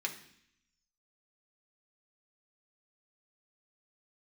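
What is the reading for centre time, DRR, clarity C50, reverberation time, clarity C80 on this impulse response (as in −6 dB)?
13 ms, 1.0 dB, 11.0 dB, 0.65 s, 13.5 dB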